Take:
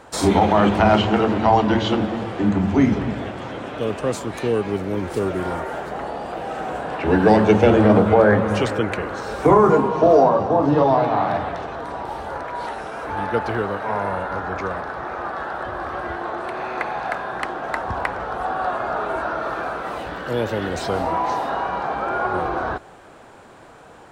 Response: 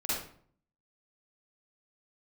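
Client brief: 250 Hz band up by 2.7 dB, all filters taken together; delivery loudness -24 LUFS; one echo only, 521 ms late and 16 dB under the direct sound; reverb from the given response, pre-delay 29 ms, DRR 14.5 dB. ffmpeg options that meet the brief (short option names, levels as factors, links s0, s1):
-filter_complex "[0:a]equalizer=f=250:t=o:g=3.5,aecho=1:1:521:0.158,asplit=2[s0][s1];[1:a]atrim=start_sample=2205,adelay=29[s2];[s1][s2]afir=irnorm=-1:irlink=0,volume=0.0891[s3];[s0][s3]amix=inputs=2:normalize=0,volume=0.596"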